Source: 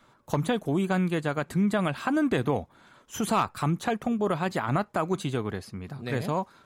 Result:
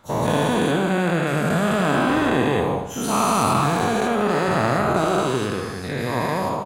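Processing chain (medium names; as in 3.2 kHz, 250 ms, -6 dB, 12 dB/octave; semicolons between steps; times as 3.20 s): every event in the spectrogram widened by 480 ms; feedback delay 77 ms, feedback 50%, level -8 dB; trim -2 dB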